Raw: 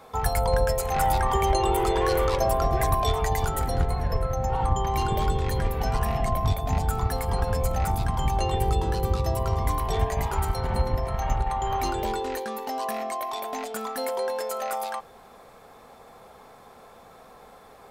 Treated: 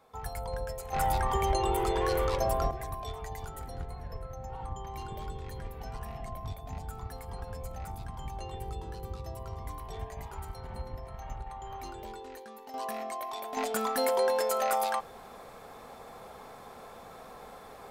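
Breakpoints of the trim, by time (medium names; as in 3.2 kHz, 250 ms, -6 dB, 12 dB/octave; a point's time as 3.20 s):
-13.5 dB
from 0.93 s -5.5 dB
from 2.71 s -15 dB
from 12.74 s -6.5 dB
from 13.57 s +1.5 dB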